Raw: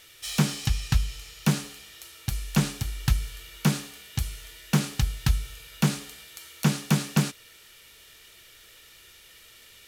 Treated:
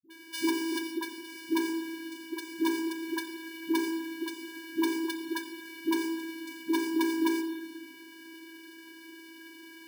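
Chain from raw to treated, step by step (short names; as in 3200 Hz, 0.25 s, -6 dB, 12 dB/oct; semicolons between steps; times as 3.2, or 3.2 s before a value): 0.71–1.14 expander -26 dBFS; in parallel at +2.5 dB: compressor, threshold -31 dBFS, peak gain reduction 14.5 dB; on the sum: vocoder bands 16, square 327 Hz; overloaded stage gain 17 dB; dispersion highs, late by 0.1 s, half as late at 420 Hz; reverb RT60 1.3 s, pre-delay 6 ms, DRR 3.5 dB; careless resampling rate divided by 3×, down filtered, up hold; gain -5.5 dB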